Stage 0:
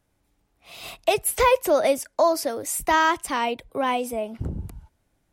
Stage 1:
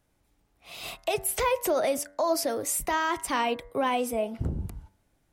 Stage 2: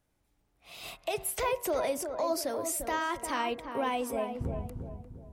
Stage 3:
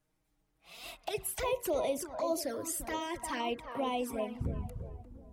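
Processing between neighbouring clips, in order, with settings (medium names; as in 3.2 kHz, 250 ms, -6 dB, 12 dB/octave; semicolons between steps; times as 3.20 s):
peak limiter -18 dBFS, peak gain reduction 8.5 dB; de-hum 96.17 Hz, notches 22
filtered feedback delay 349 ms, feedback 43%, low-pass 1.1 kHz, level -6 dB; trim -5 dB
touch-sensitive flanger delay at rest 6.5 ms, full sweep at -27 dBFS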